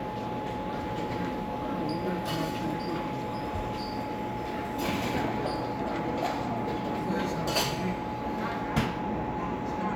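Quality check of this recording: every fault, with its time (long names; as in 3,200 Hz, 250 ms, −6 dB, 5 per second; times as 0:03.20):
whistle 850 Hz −36 dBFS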